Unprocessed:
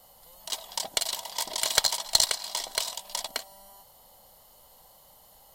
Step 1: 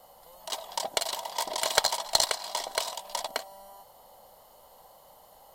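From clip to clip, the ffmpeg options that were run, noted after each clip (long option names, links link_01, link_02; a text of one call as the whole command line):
ffmpeg -i in.wav -af "equalizer=frequency=680:width=0.43:gain=10,volume=-4dB" out.wav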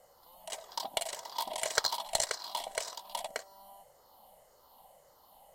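ffmpeg -i in.wav -af "afftfilt=real='re*pow(10,9/40*sin(2*PI*(0.52*log(max(b,1)*sr/1024/100)/log(2)-(-1.8)*(pts-256)/sr)))':imag='im*pow(10,9/40*sin(2*PI*(0.52*log(max(b,1)*sr/1024/100)/log(2)-(-1.8)*(pts-256)/sr)))':win_size=1024:overlap=0.75,volume=-7dB" out.wav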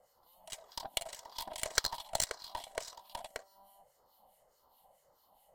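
ffmpeg -i in.wav -filter_complex "[0:a]acrossover=split=1500[link_01][link_02];[link_01]aeval=exprs='val(0)*(1-0.7/2+0.7/2*cos(2*PI*4.7*n/s))':channel_layout=same[link_03];[link_02]aeval=exprs='val(0)*(1-0.7/2-0.7/2*cos(2*PI*4.7*n/s))':channel_layout=same[link_04];[link_03][link_04]amix=inputs=2:normalize=0,aeval=exprs='0.282*(cos(1*acos(clip(val(0)/0.282,-1,1)))-cos(1*PI/2))+0.0562*(cos(5*acos(clip(val(0)/0.282,-1,1)))-cos(5*PI/2))+0.0562*(cos(7*acos(clip(val(0)/0.282,-1,1)))-cos(7*PI/2))+0.0178*(cos(8*acos(clip(val(0)/0.282,-1,1)))-cos(8*PI/2))':channel_layout=same" out.wav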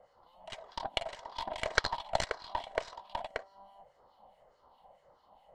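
ffmpeg -i in.wav -af "lowpass=2700,volume=7dB" out.wav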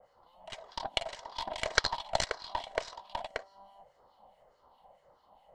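ffmpeg -i in.wav -af "adynamicequalizer=threshold=0.002:dfrequency=5700:dqfactor=0.74:tfrequency=5700:tqfactor=0.74:attack=5:release=100:ratio=0.375:range=3:mode=boostabove:tftype=bell" out.wav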